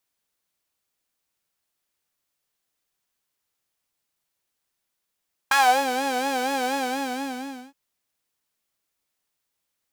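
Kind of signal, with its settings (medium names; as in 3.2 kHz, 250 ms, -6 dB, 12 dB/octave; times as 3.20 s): synth patch with vibrato C4, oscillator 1 saw, oscillator 2 saw, interval +19 st, detune 25 cents, oscillator 2 level 0 dB, sub -28 dB, filter highpass, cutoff 250 Hz, Q 2.6, filter envelope 2.5 oct, filter decay 0.33 s, filter sustain 25%, attack 6.1 ms, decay 0.33 s, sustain -9 dB, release 1.02 s, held 1.20 s, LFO 4.2 Hz, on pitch 100 cents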